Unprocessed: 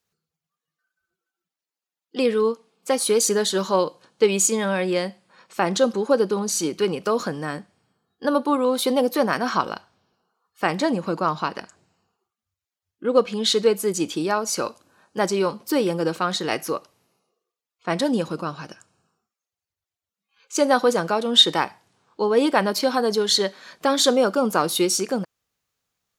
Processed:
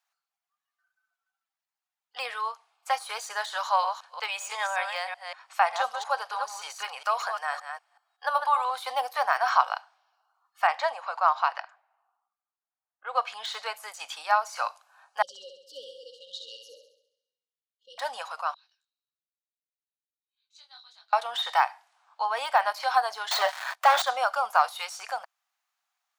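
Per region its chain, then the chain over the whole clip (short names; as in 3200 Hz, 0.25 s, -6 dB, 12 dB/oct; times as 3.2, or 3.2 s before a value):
3.63–8.71 reverse delay 0.189 s, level -7 dB + low shelf 260 Hz -8 dB
10.67–13.22 HPF 270 Hz 24 dB/oct + high shelf 6200 Hz -7 dB + low-pass opened by the level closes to 1300 Hz, open at -21 dBFS
15.22–17.98 brick-wall FIR band-stop 560–2800 Hz + tape spacing loss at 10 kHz 22 dB + flutter echo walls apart 11.5 m, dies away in 0.73 s
18.54–21.13 band-pass 3900 Hz, Q 15 + detuned doubles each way 40 cents
23.31–24.02 HPF 430 Hz + high shelf 8300 Hz +6 dB + sample leveller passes 5
whole clip: de-esser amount 70%; elliptic high-pass 720 Hz, stop band 50 dB; high shelf 2100 Hz -9 dB; gain +4.5 dB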